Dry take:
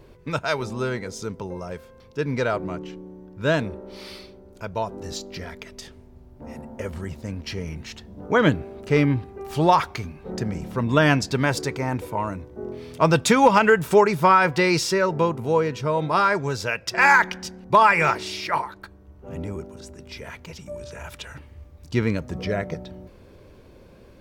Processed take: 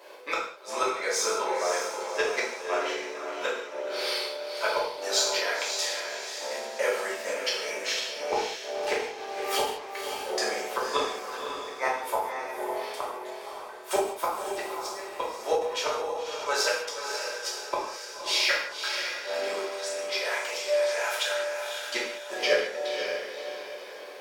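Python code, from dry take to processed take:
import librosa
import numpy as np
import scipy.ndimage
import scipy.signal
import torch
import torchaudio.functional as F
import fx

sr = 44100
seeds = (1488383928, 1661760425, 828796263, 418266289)

y = scipy.signal.sosfilt(scipy.signal.butter(4, 540.0, 'highpass', fs=sr, output='sos'), x)
y = fx.rider(y, sr, range_db=4, speed_s=2.0)
y = fx.gate_flip(y, sr, shuts_db=-16.0, range_db=-38)
y = fx.echo_diffused(y, sr, ms=551, feedback_pct=41, wet_db=-6.0)
y = fx.rev_gated(y, sr, seeds[0], gate_ms=240, shape='falling', drr_db=-6.0)
y = fx.end_taper(y, sr, db_per_s=120.0)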